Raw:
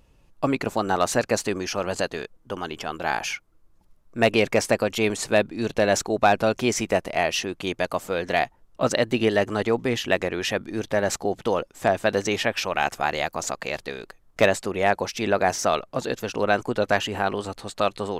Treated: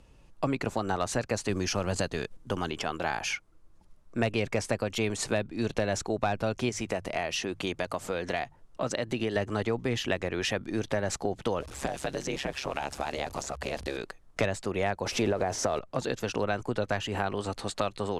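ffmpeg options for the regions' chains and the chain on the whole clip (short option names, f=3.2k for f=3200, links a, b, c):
-filter_complex "[0:a]asettb=1/sr,asplit=3[a][b][c];[a]atrim=end=1.494[d];[b]atrim=start=1.49:end=2.71,asetpts=PTS-STARTPTS,afade=t=in:d=0.004:c=qsin,afade=t=out:st=1.216:d=0.004:c=qsin,bass=f=250:g=6,treble=f=4k:g=3,acrusher=bits=8:mode=log:mix=0:aa=0.000001[e];[c]atrim=start=2.706[f];[d][e]acrossfade=d=0.004:c1=hsin:c2=qsin[g];[g][f]acrossfade=d=0.004:c1=qsin:c2=hsin,asettb=1/sr,asplit=3[h][i][j];[h]atrim=end=6.694[k];[i]atrim=start=6.69:end=9.36,asetpts=PTS-STARTPTS,afade=t=in:d=0.004:c=qsin,afade=t=out:st=2.666:d=0.004:c=qsin,bandreject=f=50:t=h:w=6,bandreject=f=100:t=h:w=6,bandreject=f=150:t=h:w=6,acompressor=threshold=-33dB:ratio=1.5:attack=3.2:release=140:knee=1:detection=peak[l];[j]atrim=start=9.356[m];[k][l]acrossfade=d=0.004:c1=hsin:c2=qsin[n];[n][m]acrossfade=d=0.004:c1=qsin:c2=hsin,asettb=1/sr,asplit=3[o][p][q];[o]atrim=end=11.604[r];[p]atrim=start=11.6:end=13.97,asetpts=PTS-STARTPTS,afade=t=in:d=0.004:c=qsin,afade=t=out:st=2.366:d=0.004:c=qsin,aeval=exprs='val(0)+0.5*0.0178*sgn(val(0))':c=same,acrossover=split=1100|2400[s][t][u];[s]acompressor=threshold=-28dB:ratio=4[v];[t]acompressor=threshold=-43dB:ratio=4[w];[u]acompressor=threshold=-37dB:ratio=4[x];[v][w][x]amix=inputs=3:normalize=0,aeval=exprs='val(0)*sin(2*PI*68*n/s)':c=same[y];[q]atrim=start=13.966[z];[r][y]acrossfade=d=0.004:c1=hsin:c2=qsin[aa];[aa][z]acrossfade=d=0.004:c1=qsin:c2=hsin,asettb=1/sr,asplit=3[ab][ac][ad];[ab]atrim=end=15.064[ae];[ac]atrim=start=15.06:end=15.79,asetpts=PTS-STARTPTS,afade=t=in:d=0.004:c=qsin,afade=t=out:st=0.726:d=0.004:c=qsin,aeval=exprs='val(0)+0.5*0.02*sgn(val(0))':c=same,equalizer=f=500:w=0.66:g=9,acompressor=threshold=-13dB:ratio=6:attack=3.2:release=140:knee=1:detection=peak[af];[ad]atrim=start=15.786[ag];[ae][af]acrossfade=d=0.004:c1=hsin:c2=qsin[ah];[ah][ag]acrossfade=d=0.004:c1=qsin:c2=hsin,lowpass=f=11k:w=0.5412,lowpass=f=11k:w=1.3066,acrossover=split=130[ai][aj];[aj]acompressor=threshold=-29dB:ratio=4[ak];[ai][ak]amix=inputs=2:normalize=0,volume=1.5dB"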